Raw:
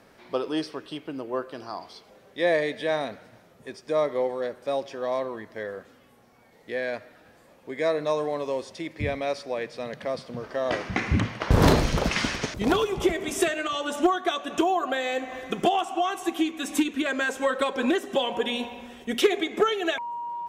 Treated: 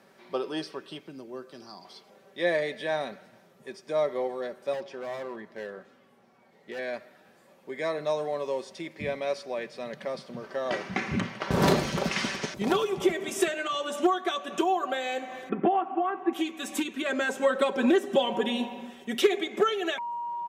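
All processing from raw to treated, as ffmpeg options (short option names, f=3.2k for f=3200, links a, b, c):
-filter_complex "[0:a]asettb=1/sr,asplit=3[a][b][c];[a]atrim=end=0.994[d];[b]atrim=start=0.99:end=1.85,asetpts=PTS-STARTPTS,afade=t=in:d=0.004:c=qsin,afade=t=out:st=0.856:d=0.004:c=qsin,equalizer=f=5.8k:w=2.4:g=4,bandreject=f=2.9k:w=15,acrossover=split=300|3000[e][f][g];[f]acompressor=threshold=-59dB:ratio=1.5:attack=3.2:release=140:knee=2.83:detection=peak[h];[e][h][g]amix=inputs=3:normalize=0[i];[c]atrim=start=1.846[j];[d][i]acrossfade=d=0.004:c1=hsin:c2=qsin[k];[k][j]acrossfade=d=0.004:c1=qsin:c2=hsin,asettb=1/sr,asplit=3[l][m][n];[l]atrim=end=4.734[o];[m]atrim=start=4.73:end=6.79,asetpts=PTS-STARTPTS,afade=t=in:d=0.004:c=qsin,afade=t=out:st=2.056:d=0.004:c=qsin,highshelf=f=6.7k:g=-11,asoftclip=type=hard:threshold=-28.5dB[p];[n]atrim=start=6.786[q];[o][p]acrossfade=d=0.004:c1=hsin:c2=qsin[r];[r][q]acrossfade=d=0.004:c1=qsin:c2=hsin,asettb=1/sr,asplit=3[s][t][u];[s]atrim=end=15.494[v];[t]atrim=start=15.49:end=16.33,asetpts=PTS-STARTPTS,afade=t=in:d=0.004:c=qsin,afade=t=out:st=0.836:d=0.004:c=qsin,lowpass=f=2k:w=0.5412,lowpass=f=2k:w=1.3066,equalizer=f=280:w=3.9:g=12[w];[u]atrim=start=16.326[x];[v][w]acrossfade=d=0.004:c1=hsin:c2=qsin[y];[y][x]acrossfade=d=0.004:c1=qsin:c2=hsin,asettb=1/sr,asplit=3[z][aa][ab];[z]atrim=end=17.094[ac];[aa]atrim=start=17.09:end=18.9,asetpts=PTS-STARTPTS,afade=t=in:d=0.004:c=qsin,afade=t=out:st=1.806:d=0.004:c=qsin,highpass=140,lowshelf=f=390:g=9[ad];[ab]atrim=start=18.896[ae];[ac][ad]acrossfade=d=0.004:c1=hsin:c2=qsin[af];[af][ae]acrossfade=d=0.004:c1=qsin:c2=hsin,highpass=130,aecho=1:1:5.2:0.45,volume=-3.5dB"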